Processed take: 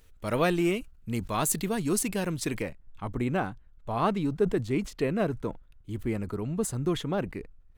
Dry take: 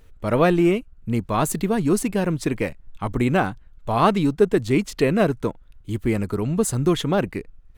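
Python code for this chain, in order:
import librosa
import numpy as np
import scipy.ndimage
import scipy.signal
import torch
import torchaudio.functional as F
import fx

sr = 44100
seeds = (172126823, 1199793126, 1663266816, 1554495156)

y = fx.high_shelf(x, sr, hz=2400.0, db=fx.steps((0.0, 10.0), (2.61, -3.5)))
y = fx.sustainer(y, sr, db_per_s=150.0)
y = F.gain(torch.from_numpy(y), -8.5).numpy()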